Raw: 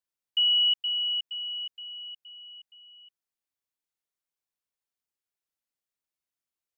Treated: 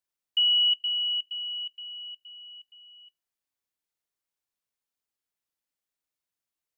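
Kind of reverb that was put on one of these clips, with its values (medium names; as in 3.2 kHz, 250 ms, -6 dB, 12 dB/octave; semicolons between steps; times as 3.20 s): FDN reverb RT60 0.82 s, high-frequency decay 0.35×, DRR 18 dB; trim +1 dB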